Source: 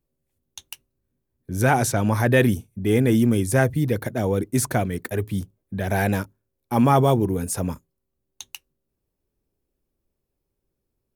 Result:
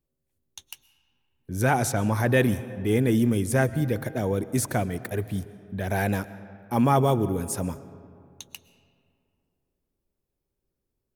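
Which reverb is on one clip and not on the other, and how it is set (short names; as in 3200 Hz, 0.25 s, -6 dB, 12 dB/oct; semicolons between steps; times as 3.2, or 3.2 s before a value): digital reverb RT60 2.5 s, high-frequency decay 0.5×, pre-delay 85 ms, DRR 15.5 dB; gain -3.5 dB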